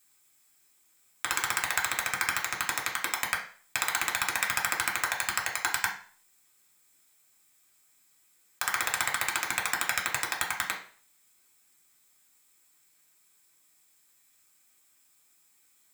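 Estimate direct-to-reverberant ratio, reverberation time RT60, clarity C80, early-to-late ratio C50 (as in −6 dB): −2.0 dB, 0.45 s, 13.0 dB, 8.5 dB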